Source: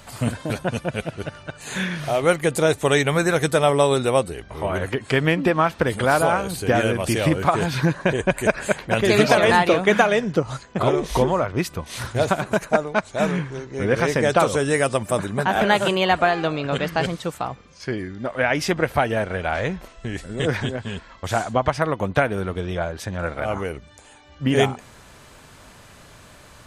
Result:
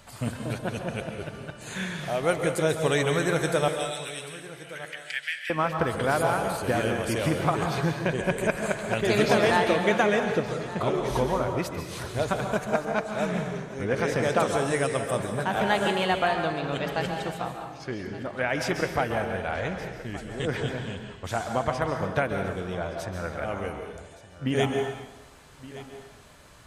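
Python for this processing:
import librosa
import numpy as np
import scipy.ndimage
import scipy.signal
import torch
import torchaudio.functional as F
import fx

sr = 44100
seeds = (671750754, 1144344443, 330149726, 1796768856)

y = fx.steep_highpass(x, sr, hz=1500.0, slope=72, at=(3.68, 5.5))
y = y + 10.0 ** (-17.0 / 20.0) * np.pad(y, (int(1170 * sr / 1000.0), 0))[:len(y)]
y = fx.rev_plate(y, sr, seeds[0], rt60_s=1.1, hf_ratio=0.85, predelay_ms=120, drr_db=4.5)
y = F.gain(torch.from_numpy(y), -7.0).numpy()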